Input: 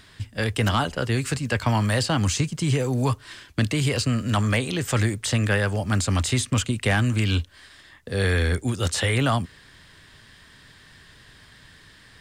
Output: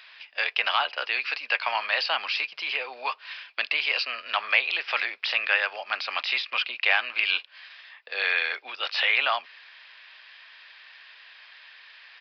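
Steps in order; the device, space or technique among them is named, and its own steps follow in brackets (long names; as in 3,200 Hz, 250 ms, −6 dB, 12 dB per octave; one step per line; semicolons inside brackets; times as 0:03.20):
musical greeting card (downsampling to 11,025 Hz; high-pass filter 690 Hz 24 dB per octave; parametric band 2,500 Hz +12 dB 0.35 octaves)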